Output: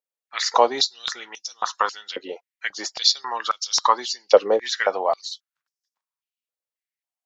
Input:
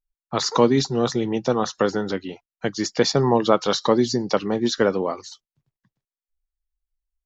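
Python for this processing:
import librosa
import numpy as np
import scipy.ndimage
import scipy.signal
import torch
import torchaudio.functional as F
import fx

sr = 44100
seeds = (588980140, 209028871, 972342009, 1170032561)

y = fx.filter_held_highpass(x, sr, hz=3.7, low_hz=510.0, high_hz=5400.0)
y = F.gain(torch.from_numpy(y), -1.0).numpy()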